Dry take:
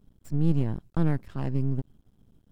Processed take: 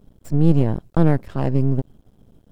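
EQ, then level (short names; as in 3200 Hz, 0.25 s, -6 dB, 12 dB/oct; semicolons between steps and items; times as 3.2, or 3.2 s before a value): bell 570 Hz +7 dB 1.2 oct; +7.5 dB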